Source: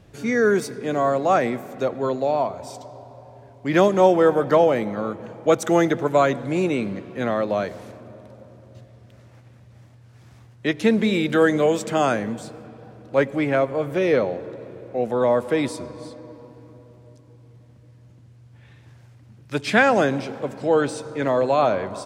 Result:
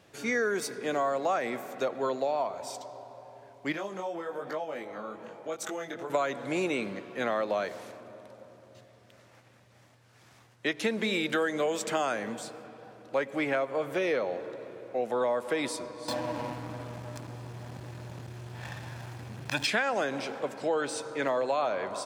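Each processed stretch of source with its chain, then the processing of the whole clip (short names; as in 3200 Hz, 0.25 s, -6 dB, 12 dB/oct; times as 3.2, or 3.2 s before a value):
3.72–6.1 compressor 4:1, threshold -27 dBFS + chorus 1.1 Hz, delay 19 ms, depth 4.6 ms
16.08–19.67 comb 1.2 ms, depth 89% + backlash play -44 dBFS + fast leveller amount 70%
whole clip: HPF 640 Hz 6 dB/oct; compressor 6:1, threshold -25 dBFS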